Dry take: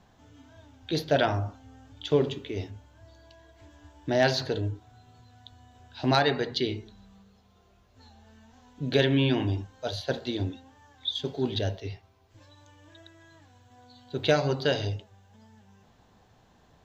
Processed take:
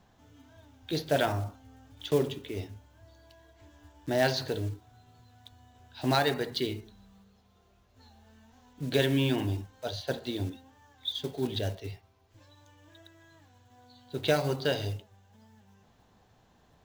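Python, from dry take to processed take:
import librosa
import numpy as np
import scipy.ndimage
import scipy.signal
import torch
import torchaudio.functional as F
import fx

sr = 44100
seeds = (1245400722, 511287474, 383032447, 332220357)

y = fx.block_float(x, sr, bits=5)
y = y * 10.0 ** (-3.0 / 20.0)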